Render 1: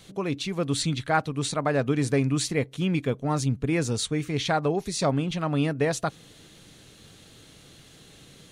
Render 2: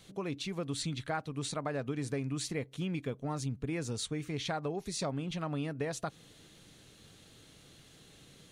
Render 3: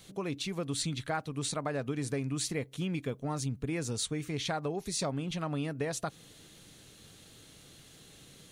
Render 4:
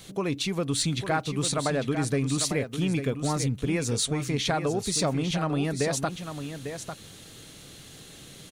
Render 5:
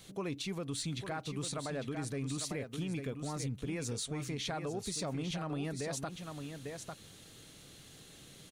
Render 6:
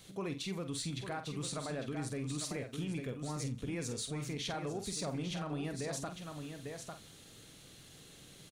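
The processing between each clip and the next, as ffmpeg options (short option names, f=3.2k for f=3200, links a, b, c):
-af "acompressor=threshold=-26dB:ratio=3,volume=-6.5dB"
-af "highshelf=f=7.6k:g=7,volume=1.5dB"
-filter_complex "[0:a]asplit=2[a][b];[b]asoftclip=type=tanh:threshold=-30dB,volume=-9dB[c];[a][c]amix=inputs=2:normalize=0,aecho=1:1:849:0.355,volume=5dB"
-af "alimiter=limit=-20.5dB:level=0:latency=1:release=109,volume=-8dB"
-filter_complex "[0:a]asplit=2[a][b];[b]adelay=47,volume=-8.5dB[c];[a][c]amix=inputs=2:normalize=0,aecho=1:1:87|174|261:0.0708|0.0297|0.0125,volume=-1.5dB"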